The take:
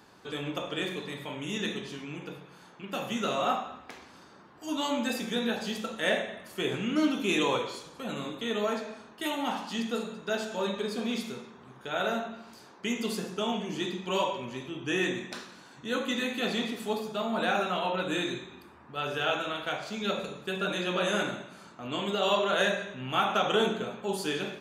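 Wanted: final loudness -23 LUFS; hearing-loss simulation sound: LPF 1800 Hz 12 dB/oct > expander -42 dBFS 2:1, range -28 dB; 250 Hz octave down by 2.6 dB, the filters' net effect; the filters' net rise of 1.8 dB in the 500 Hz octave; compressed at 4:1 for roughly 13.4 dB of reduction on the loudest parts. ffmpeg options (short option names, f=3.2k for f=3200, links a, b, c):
-af "equalizer=f=250:t=o:g=-4.5,equalizer=f=500:t=o:g=3.5,acompressor=threshold=-37dB:ratio=4,lowpass=1.8k,agate=range=-28dB:threshold=-42dB:ratio=2,volume=18dB"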